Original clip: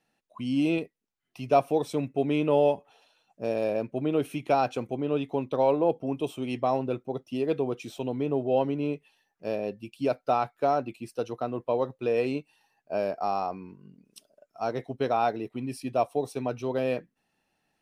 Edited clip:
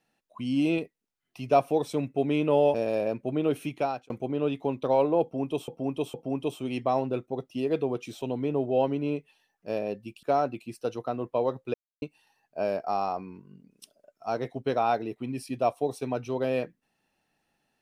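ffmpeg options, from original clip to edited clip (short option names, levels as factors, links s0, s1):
-filter_complex "[0:a]asplit=8[s0][s1][s2][s3][s4][s5][s6][s7];[s0]atrim=end=2.742[s8];[s1]atrim=start=3.428:end=4.79,asetpts=PTS-STARTPTS,afade=t=out:st=0.942:d=0.42[s9];[s2]atrim=start=4.79:end=6.372,asetpts=PTS-STARTPTS,afade=t=in:d=0.004:c=hsin[s10];[s3]atrim=start=5.908:end=6.372[s11];[s4]atrim=start=5.908:end=10.002[s12];[s5]atrim=start=10.568:end=12.08,asetpts=PTS-STARTPTS,afade=t=out:st=1.508:d=0.004:c=hsin[s13];[s6]atrim=start=12.08:end=12.36,asetpts=PTS-STARTPTS,volume=0[s14];[s7]atrim=start=12.36,asetpts=PTS-STARTPTS,afade=t=in:d=0.004:c=hsin[s15];[s9][s10]concat=n=2:v=0:a=1[s16];[s8][s16]acrossfade=d=0.004:c1=hsin:c2=hsin[s17];[s17][s11]acrossfade=d=0.004:c1=hsin:c2=hsin[s18];[s18][s12]acrossfade=d=0.004:c1=hsin:c2=hsin[s19];[s13][s14][s15]concat=n=3:v=0:a=1[s20];[s19][s20]acrossfade=d=0.004:c1=hsin:c2=hsin"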